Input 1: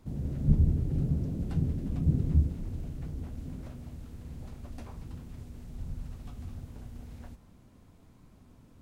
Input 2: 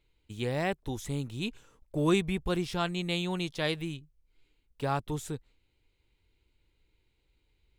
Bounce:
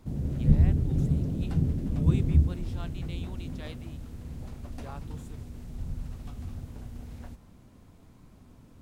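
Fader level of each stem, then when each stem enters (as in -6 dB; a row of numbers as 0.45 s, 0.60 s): +3.0 dB, -14.5 dB; 0.00 s, 0.00 s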